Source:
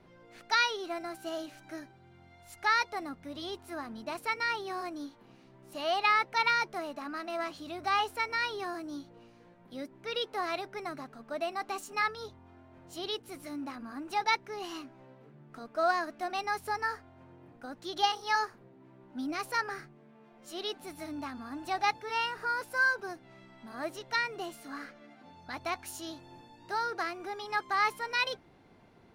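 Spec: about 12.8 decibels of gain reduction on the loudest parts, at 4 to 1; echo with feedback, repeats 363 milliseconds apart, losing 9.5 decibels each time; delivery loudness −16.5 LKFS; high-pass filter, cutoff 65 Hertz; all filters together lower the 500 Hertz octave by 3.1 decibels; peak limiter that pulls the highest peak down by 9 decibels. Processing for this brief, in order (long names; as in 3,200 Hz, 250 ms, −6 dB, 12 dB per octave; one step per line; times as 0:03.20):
high-pass filter 65 Hz
parametric band 500 Hz −4.5 dB
downward compressor 4 to 1, threshold −38 dBFS
brickwall limiter −33.5 dBFS
repeating echo 363 ms, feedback 33%, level −9.5 dB
level +27.5 dB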